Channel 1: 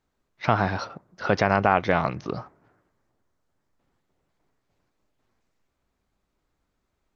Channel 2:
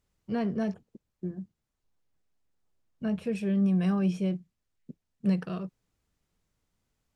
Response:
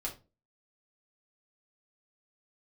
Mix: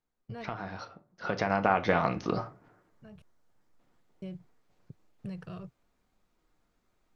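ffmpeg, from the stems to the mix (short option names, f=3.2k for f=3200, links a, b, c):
-filter_complex "[0:a]acompressor=threshold=-21dB:ratio=6,volume=-2.5dB,afade=t=in:st=1.18:d=0.5:silence=0.251189,asplit=3[a][b][c];[b]volume=-3.5dB[d];[1:a]lowshelf=f=160:t=q:w=3:g=10.5,agate=range=-33dB:threshold=-36dB:ratio=3:detection=peak,acompressor=threshold=-33dB:ratio=4,volume=-4dB,asplit=3[e][f][g];[e]atrim=end=3.22,asetpts=PTS-STARTPTS,afade=t=out:st=3.216:d=0.004:c=hsin[h];[f]atrim=start=3.22:end=4.22,asetpts=PTS-STARTPTS,volume=0[i];[g]atrim=start=4.22,asetpts=PTS-STARTPTS,afade=t=in:d=0.004:c=hsin[j];[h][i][j]concat=n=3:v=0:a=1[k];[c]apad=whole_len=315574[l];[k][l]sidechaincompress=threshold=-54dB:ratio=8:attack=11:release=650[m];[2:a]atrim=start_sample=2205[n];[d][n]afir=irnorm=-1:irlink=0[o];[a][m][o]amix=inputs=3:normalize=0,equalizer=f=68:w=0.95:g=-4.5"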